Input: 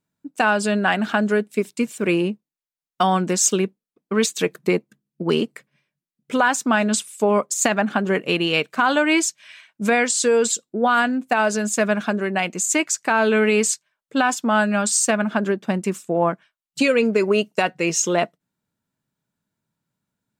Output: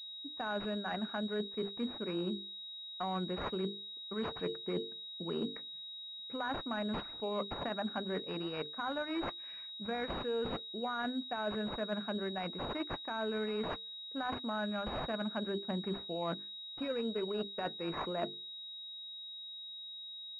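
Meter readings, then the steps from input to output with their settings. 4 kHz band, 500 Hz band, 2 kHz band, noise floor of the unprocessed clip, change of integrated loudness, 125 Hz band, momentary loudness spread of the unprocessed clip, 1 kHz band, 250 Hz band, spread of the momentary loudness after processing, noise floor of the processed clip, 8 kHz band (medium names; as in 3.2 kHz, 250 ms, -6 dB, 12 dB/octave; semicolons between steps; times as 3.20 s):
-8.5 dB, -17.0 dB, -21.5 dB, under -85 dBFS, -18.0 dB, -15.0 dB, 7 LU, -17.5 dB, -16.5 dB, 7 LU, -47 dBFS, under -40 dB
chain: hum notches 50/100/150/200/250/300/350/400/450 Hz; reverse; compression 6:1, threshold -27 dBFS, peak gain reduction 14 dB; reverse; class-D stage that switches slowly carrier 3.8 kHz; trim -7 dB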